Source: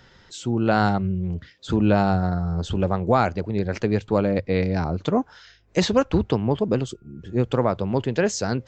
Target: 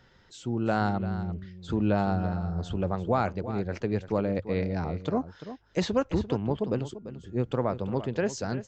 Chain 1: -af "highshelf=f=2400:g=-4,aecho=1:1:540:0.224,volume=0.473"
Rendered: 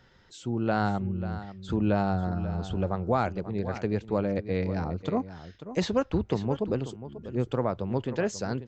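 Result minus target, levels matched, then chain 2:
echo 198 ms late
-af "highshelf=f=2400:g=-4,aecho=1:1:342:0.224,volume=0.473"

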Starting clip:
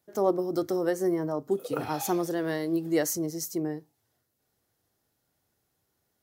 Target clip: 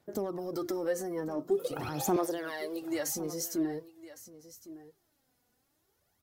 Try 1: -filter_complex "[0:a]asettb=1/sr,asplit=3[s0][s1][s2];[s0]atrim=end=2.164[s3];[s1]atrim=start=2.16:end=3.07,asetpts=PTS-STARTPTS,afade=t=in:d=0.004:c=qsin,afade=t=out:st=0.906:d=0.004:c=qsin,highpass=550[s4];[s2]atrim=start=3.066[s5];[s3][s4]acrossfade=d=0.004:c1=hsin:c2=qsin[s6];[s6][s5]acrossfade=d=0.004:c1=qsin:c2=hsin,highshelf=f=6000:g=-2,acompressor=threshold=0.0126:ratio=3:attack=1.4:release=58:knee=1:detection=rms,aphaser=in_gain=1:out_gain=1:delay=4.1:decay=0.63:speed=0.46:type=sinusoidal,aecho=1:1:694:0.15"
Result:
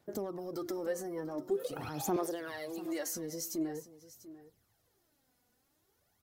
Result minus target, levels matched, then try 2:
echo 415 ms early; compression: peak gain reduction +4 dB
-filter_complex "[0:a]asettb=1/sr,asplit=3[s0][s1][s2];[s0]atrim=end=2.164[s3];[s1]atrim=start=2.16:end=3.07,asetpts=PTS-STARTPTS,afade=t=in:d=0.004:c=qsin,afade=t=out:st=0.906:d=0.004:c=qsin,highpass=550[s4];[s2]atrim=start=3.066[s5];[s3][s4]acrossfade=d=0.004:c1=hsin:c2=qsin[s6];[s6][s5]acrossfade=d=0.004:c1=qsin:c2=hsin,highshelf=f=6000:g=-2,acompressor=threshold=0.0251:ratio=3:attack=1.4:release=58:knee=1:detection=rms,aphaser=in_gain=1:out_gain=1:delay=4.1:decay=0.63:speed=0.46:type=sinusoidal,aecho=1:1:1109:0.15"

